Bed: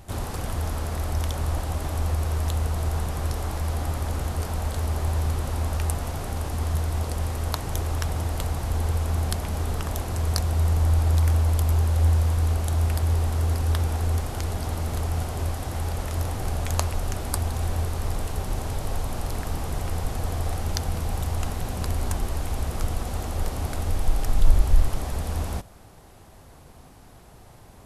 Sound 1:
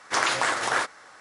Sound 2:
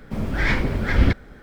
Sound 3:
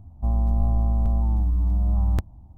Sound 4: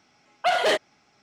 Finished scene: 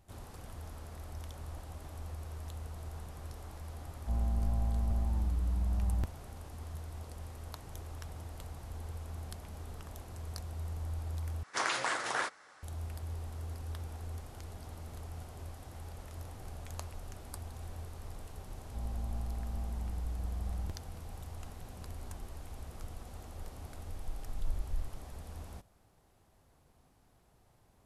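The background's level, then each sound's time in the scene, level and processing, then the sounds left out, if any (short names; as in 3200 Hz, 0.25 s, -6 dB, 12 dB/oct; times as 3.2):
bed -18 dB
3.85 add 3 -10.5 dB
11.43 replace with 1 -9 dB
18.51 add 3 -17 dB
not used: 2, 4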